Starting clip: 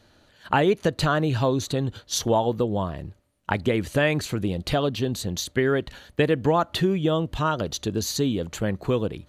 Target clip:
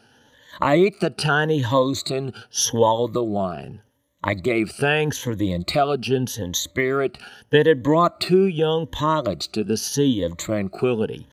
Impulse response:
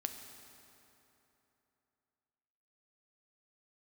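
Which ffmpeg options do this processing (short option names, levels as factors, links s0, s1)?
-af "afftfilt=real='re*pow(10,15/40*sin(2*PI*(1.1*log(max(b,1)*sr/1024/100)/log(2)-(1)*(pts-256)/sr)))':imag='im*pow(10,15/40*sin(2*PI*(1.1*log(max(b,1)*sr/1024/100)/log(2)-(1)*(pts-256)/sr)))':win_size=1024:overlap=0.75,highpass=f=140:p=1,atempo=0.82,volume=1.19"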